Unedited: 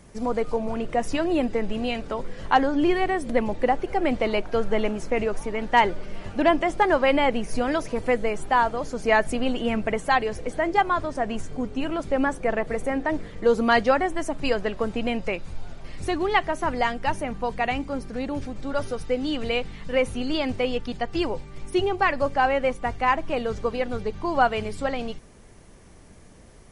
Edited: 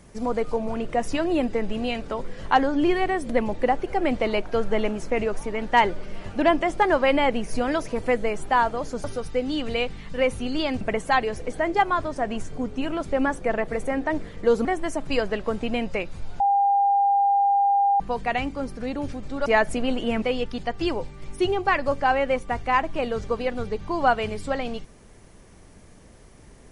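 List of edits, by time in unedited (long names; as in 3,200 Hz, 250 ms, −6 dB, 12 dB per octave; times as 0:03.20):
0:09.04–0:09.80: swap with 0:18.79–0:20.56
0:13.64–0:13.98: remove
0:15.73–0:17.33: beep over 801 Hz −16.5 dBFS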